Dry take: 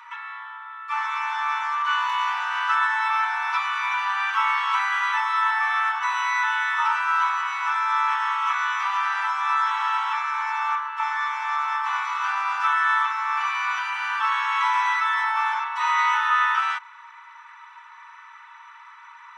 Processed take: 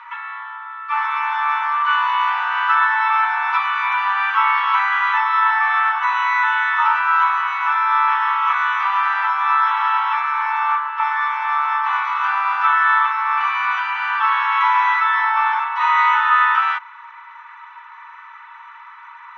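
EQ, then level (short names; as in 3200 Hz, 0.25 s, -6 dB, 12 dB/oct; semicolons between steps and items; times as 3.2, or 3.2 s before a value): air absorption 270 m; +7.5 dB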